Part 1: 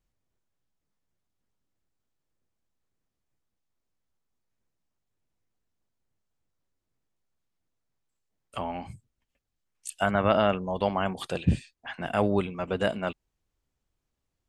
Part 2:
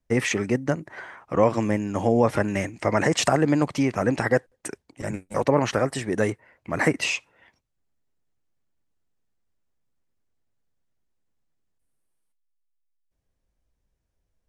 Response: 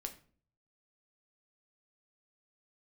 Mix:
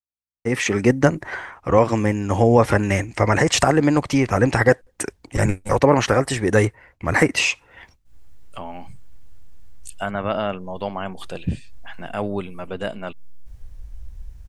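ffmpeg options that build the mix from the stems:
-filter_complex "[0:a]aeval=exprs='val(0)+0.000708*(sin(2*PI*60*n/s)+sin(2*PI*2*60*n/s)/2+sin(2*PI*3*60*n/s)/3+sin(2*PI*4*60*n/s)/4+sin(2*PI*5*60*n/s)/5)':c=same,volume=-13dB,asplit=2[a][b];[1:a]bandreject=f=630:w=12,dynaudnorm=f=300:g=3:m=15.5dB,asubboost=boost=11:cutoff=80,adelay=350,volume=-5.5dB[c];[b]apad=whole_len=654135[d];[c][d]sidechaincompress=threshold=-43dB:ratio=8:attack=5.8:release=211[e];[a][e]amix=inputs=2:normalize=0,agate=range=-33dB:threshold=-53dB:ratio=3:detection=peak,dynaudnorm=f=190:g=5:m=12dB"

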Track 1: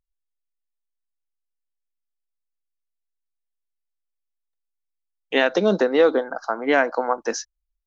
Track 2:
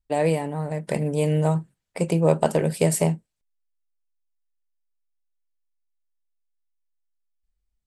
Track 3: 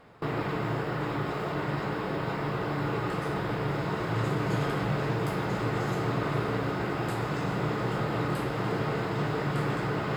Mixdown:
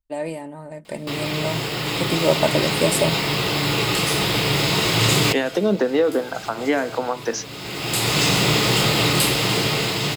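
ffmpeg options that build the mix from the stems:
-filter_complex "[0:a]bandreject=f=110.4:t=h:w=4,bandreject=f=220.8:t=h:w=4,bandreject=f=331.2:t=h:w=4,bandreject=f=441.6:t=h:w=4,bandreject=f=552:t=h:w=4,bandreject=f=662.4:t=h:w=4,bandreject=f=772.8:t=h:w=4,bandreject=f=883.2:t=h:w=4,bandreject=f=993.6:t=h:w=4,bandreject=f=1.104k:t=h:w=4,bandreject=f=1.2144k:t=h:w=4,bandreject=f=1.3248k:t=h:w=4,bandreject=f=1.4352k:t=h:w=4,bandreject=f=1.5456k:t=h:w=4,bandreject=f=1.656k:t=h:w=4,bandreject=f=1.7664k:t=h:w=4,bandreject=f=1.8768k:t=h:w=4,bandreject=f=1.9872k:t=h:w=4,bandreject=f=2.0976k:t=h:w=4,bandreject=f=2.208k:t=h:w=4,bandreject=f=2.3184k:t=h:w=4,bandreject=f=2.4288k:t=h:w=4,bandreject=f=2.5392k:t=h:w=4,bandreject=f=2.6496k:t=h:w=4,bandreject=f=2.76k:t=h:w=4,bandreject=f=2.8704k:t=h:w=4,bandreject=f=2.9808k:t=h:w=4,bandreject=f=3.0912k:t=h:w=4,bandreject=f=3.2016k:t=h:w=4,bandreject=f=3.312k:t=h:w=4,bandreject=f=3.4224k:t=h:w=4,acrossover=split=390[a][b];[b]acompressor=threshold=-24dB:ratio=6[c];[a][c]amix=inputs=2:normalize=0,volume=-8dB,asplit=2[d][e];[1:a]aecho=1:1:3.3:0.52,volume=-6.5dB[f];[2:a]aexciter=amount=7.7:drive=4.5:freq=2.3k,adelay=850,volume=-1dB[g];[e]apad=whole_len=485642[h];[g][h]sidechaincompress=threshold=-53dB:ratio=5:attack=6.2:release=518[i];[d][f][i]amix=inputs=3:normalize=0,dynaudnorm=f=400:g=9:m=11dB"

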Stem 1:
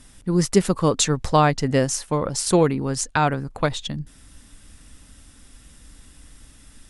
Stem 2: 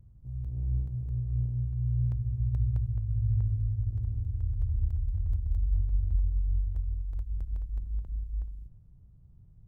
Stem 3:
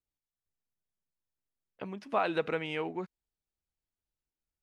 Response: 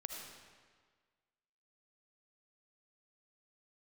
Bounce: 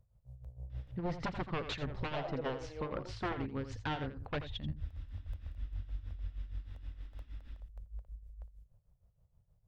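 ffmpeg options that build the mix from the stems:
-filter_complex "[0:a]aeval=exprs='0.15*(abs(mod(val(0)/0.15+3,4)-2)-1)':c=same,lowpass=f=3.7k:w=0.5412,lowpass=f=3.7k:w=1.3066,adelay=700,volume=-7dB,asplit=2[a][b];[b]volume=-15.5dB[c];[1:a]lowshelf=f=410:t=q:w=3:g=-9.5,volume=-1.5dB[d];[2:a]bandpass=f=580:t=q:w=1.9:csg=0,volume=-6.5dB,asplit=3[e][f][g];[f]volume=-3.5dB[h];[g]apad=whole_len=426751[i];[d][i]sidechaincompress=threshold=-41dB:ratio=8:attack=16:release=1410[j];[a][j]amix=inputs=2:normalize=0,tremolo=f=6.4:d=0.76,alimiter=level_in=2.5dB:limit=-24dB:level=0:latency=1:release=177,volume=-2.5dB,volume=0dB[k];[c][h]amix=inputs=2:normalize=0,aecho=0:1:84:1[l];[e][k][l]amix=inputs=3:normalize=0,alimiter=level_in=3.5dB:limit=-24dB:level=0:latency=1:release=437,volume=-3.5dB"

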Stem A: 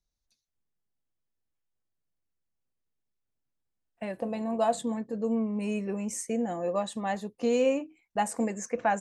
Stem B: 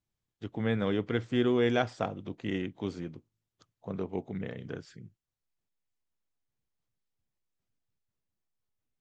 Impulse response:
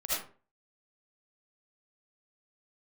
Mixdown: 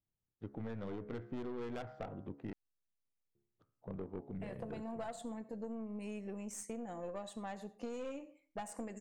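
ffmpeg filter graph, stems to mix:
-filter_complex "[0:a]adelay=400,volume=-8dB,asplit=2[a][b];[b]volume=-21.5dB[c];[1:a]bandreject=f=69.95:t=h:w=4,bandreject=f=139.9:t=h:w=4,bandreject=f=209.85:t=h:w=4,bandreject=f=279.8:t=h:w=4,bandreject=f=349.75:t=h:w=4,bandreject=f=419.7:t=h:w=4,bandreject=f=489.65:t=h:w=4,bandreject=f=559.6:t=h:w=4,bandreject=f=629.55:t=h:w=4,bandreject=f=699.5:t=h:w=4,bandreject=f=769.45:t=h:w=4,bandreject=f=839.4:t=h:w=4,bandreject=f=909.35:t=h:w=4,bandreject=f=979.3:t=h:w=4,bandreject=f=1.04925k:t=h:w=4,bandreject=f=1.1192k:t=h:w=4,bandreject=f=1.18915k:t=h:w=4,bandreject=f=1.2591k:t=h:w=4,bandreject=f=1.32905k:t=h:w=4,bandreject=f=1.399k:t=h:w=4,bandreject=f=1.46895k:t=h:w=4,bandreject=f=1.5389k:t=h:w=4,bandreject=f=1.60885k:t=h:w=4,bandreject=f=1.6788k:t=h:w=4,bandreject=f=1.74875k:t=h:w=4,bandreject=f=1.8187k:t=h:w=4,bandreject=f=1.88865k:t=h:w=4,bandreject=f=1.9586k:t=h:w=4,bandreject=f=2.02855k:t=h:w=4,bandreject=f=2.0985k:t=h:w=4,bandreject=f=2.16845k:t=h:w=4,adynamicsmooth=sensitivity=2:basefreq=1.3k,volume=-2dB,asplit=3[d][e][f];[d]atrim=end=2.53,asetpts=PTS-STARTPTS,afade=t=out:st=2.526:d=0.004:c=hsin[g];[e]atrim=start=2.53:end=3.35,asetpts=PTS-STARTPTS,volume=0[h];[f]atrim=start=3.35,asetpts=PTS-STARTPTS,afade=t=in:d=0.004:c=hsin[i];[g][h][i]concat=n=3:v=0:a=1[j];[2:a]atrim=start_sample=2205[k];[c][k]afir=irnorm=-1:irlink=0[l];[a][j][l]amix=inputs=3:normalize=0,aeval=exprs='(tanh(31.6*val(0)+0.5)-tanh(0.5))/31.6':c=same,acompressor=threshold=-39dB:ratio=6"

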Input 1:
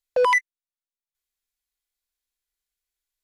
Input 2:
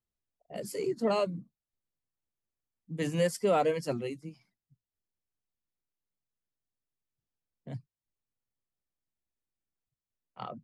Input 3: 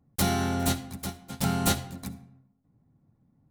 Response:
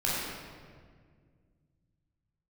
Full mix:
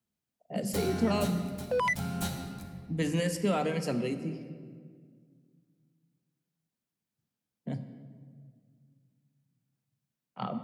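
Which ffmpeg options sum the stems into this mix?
-filter_complex "[0:a]adelay=1550,volume=-9.5dB[a];[1:a]highpass=89,acrossover=split=250|1200[b][c][d];[b]acompressor=threshold=-45dB:ratio=4[e];[c]acompressor=threshold=-37dB:ratio=4[f];[d]acompressor=threshold=-39dB:ratio=4[g];[e][f][g]amix=inputs=3:normalize=0,equalizer=f=210:w=1.7:g=10.5,volume=2.5dB,asplit=2[h][i];[i]volume=-17dB[j];[2:a]adelay=550,volume=-14.5dB,asplit=2[k][l];[l]volume=-8dB[m];[3:a]atrim=start_sample=2205[n];[j][m]amix=inputs=2:normalize=0[o];[o][n]afir=irnorm=-1:irlink=0[p];[a][h][k][p]amix=inputs=4:normalize=0"

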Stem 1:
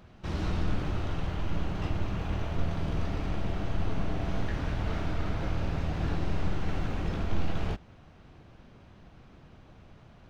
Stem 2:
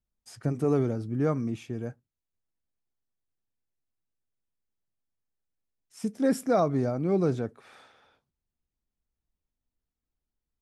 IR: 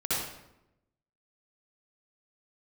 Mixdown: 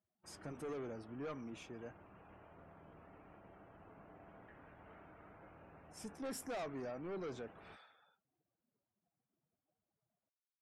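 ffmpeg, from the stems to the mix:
-filter_complex "[0:a]lowpass=3.6k,highshelf=f=2.3k:g=-9.5,volume=-15.5dB[a];[1:a]volume=-5.5dB[b];[a][b]amix=inputs=2:normalize=0,highpass=f=740:p=1,asoftclip=type=tanh:threshold=-39.5dB,afftdn=nr=20:nf=-68"

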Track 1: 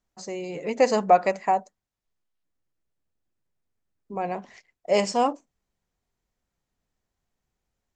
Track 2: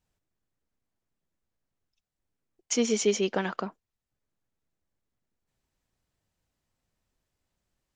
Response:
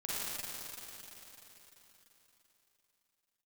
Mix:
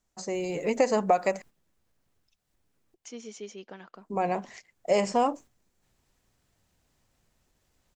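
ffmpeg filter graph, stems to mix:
-filter_complex "[0:a]equalizer=f=7.6k:w=1.2:g=6.5,volume=2dB,asplit=3[a][b][c];[a]atrim=end=1.42,asetpts=PTS-STARTPTS,afade=t=out:st=1.416:d=0.004:c=hsin[d];[b]atrim=start=1.42:end=3.94,asetpts=PTS-STARTPTS,volume=0[e];[c]atrim=start=3.94,asetpts=PTS-STARTPTS,afade=t=in:d=0.004:c=hsin[f];[d][e][f]concat=n=3:v=0:a=1,asplit=2[g][h];[1:a]acompressor=mode=upward:threshold=-34dB:ratio=2.5,adelay=350,volume=-6.5dB[i];[h]apad=whole_len=366180[j];[i][j]sidechaingate=range=-10dB:threshold=-42dB:ratio=16:detection=peak[k];[g][k]amix=inputs=2:normalize=0,acrossover=split=2800|6500[l][m][n];[l]acompressor=threshold=-20dB:ratio=4[o];[m]acompressor=threshold=-47dB:ratio=4[p];[n]acompressor=threshold=-48dB:ratio=4[q];[o][p][q]amix=inputs=3:normalize=0"

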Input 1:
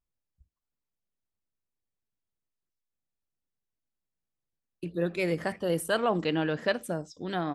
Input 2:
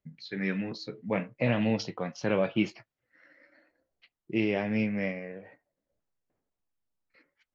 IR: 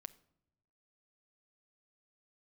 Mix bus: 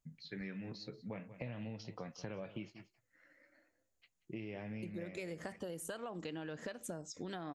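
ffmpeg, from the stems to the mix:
-filter_complex "[0:a]acompressor=threshold=-30dB:ratio=6,equalizer=f=6.8k:t=o:w=0.39:g=11.5,volume=0dB[a];[1:a]equalizer=f=98:t=o:w=1:g=8,acompressor=threshold=-30dB:ratio=1.5,volume=-8dB,asplit=2[b][c];[c]volume=-19dB,aecho=0:1:184:1[d];[a][b][d]amix=inputs=3:normalize=0,acompressor=threshold=-41dB:ratio=6"

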